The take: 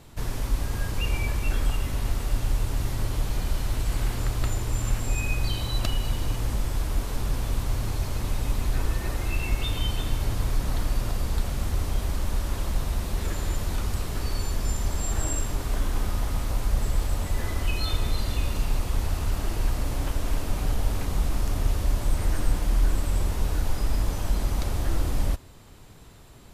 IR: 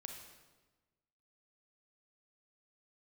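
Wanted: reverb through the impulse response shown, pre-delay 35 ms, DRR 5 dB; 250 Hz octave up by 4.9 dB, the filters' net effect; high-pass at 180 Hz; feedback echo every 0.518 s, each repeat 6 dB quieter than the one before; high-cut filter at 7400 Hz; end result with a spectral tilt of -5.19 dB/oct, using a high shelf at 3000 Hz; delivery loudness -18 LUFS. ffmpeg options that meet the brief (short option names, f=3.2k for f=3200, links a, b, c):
-filter_complex "[0:a]highpass=180,lowpass=7.4k,equalizer=f=250:t=o:g=8,highshelf=f=3k:g=-7.5,aecho=1:1:518|1036|1554|2072|2590|3108:0.501|0.251|0.125|0.0626|0.0313|0.0157,asplit=2[a][b];[1:a]atrim=start_sample=2205,adelay=35[c];[b][c]afir=irnorm=-1:irlink=0,volume=-1dB[d];[a][d]amix=inputs=2:normalize=0,volume=14dB"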